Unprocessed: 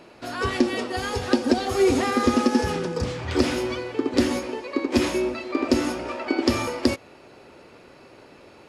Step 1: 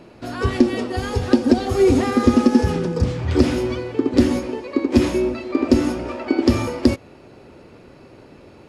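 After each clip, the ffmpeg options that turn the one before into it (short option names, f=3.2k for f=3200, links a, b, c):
-af "lowshelf=f=360:g=12,volume=-1.5dB"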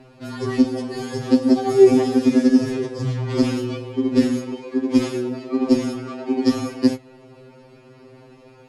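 -af "afftfilt=real='re*2.45*eq(mod(b,6),0)':imag='im*2.45*eq(mod(b,6),0)':win_size=2048:overlap=0.75"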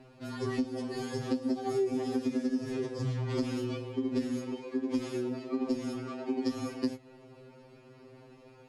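-af "acompressor=threshold=-20dB:ratio=6,volume=-7.5dB"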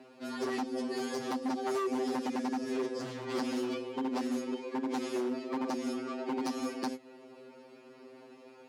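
-af "aeval=exprs='0.0376*(abs(mod(val(0)/0.0376+3,4)-2)-1)':c=same,highpass=f=210:w=0.5412,highpass=f=210:w=1.3066,volume=2dB"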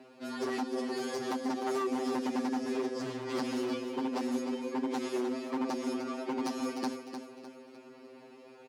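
-af "aecho=1:1:303|606|909|1212:0.355|0.138|0.054|0.021"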